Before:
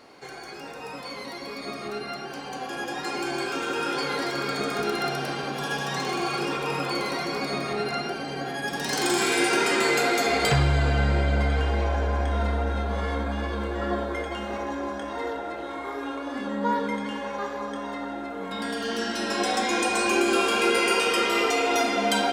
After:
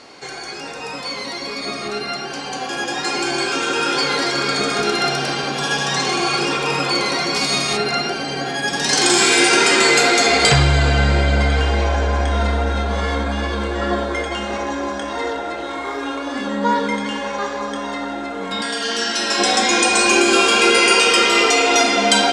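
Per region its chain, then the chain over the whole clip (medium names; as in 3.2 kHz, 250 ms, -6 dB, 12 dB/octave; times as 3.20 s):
7.34–7.76 s: formants flattened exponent 0.6 + peaking EQ 1.7 kHz -5.5 dB 0.25 oct
18.61–19.39 s: brick-wall FIR low-pass 13 kHz + bass shelf 290 Hz -10 dB
whole clip: low-pass 8.5 kHz 24 dB/octave; treble shelf 2.8 kHz +9 dB; trim +6.5 dB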